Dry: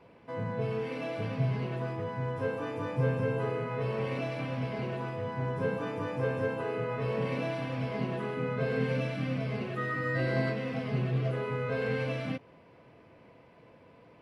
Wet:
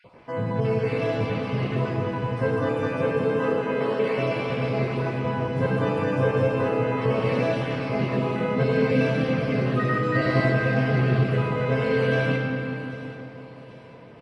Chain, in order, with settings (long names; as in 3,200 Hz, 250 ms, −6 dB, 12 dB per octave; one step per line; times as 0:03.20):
time-frequency cells dropped at random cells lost 23%
0:02.89–0:04.17: Butterworth high-pass 160 Hz 48 dB per octave
comb and all-pass reverb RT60 3.8 s, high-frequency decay 0.55×, pre-delay 15 ms, DRR 0.5 dB
downsampling to 22,050 Hz
on a send: delay with a high-pass on its return 788 ms, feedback 45%, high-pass 3,500 Hz, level −12 dB
on the sum: level +7.5 dB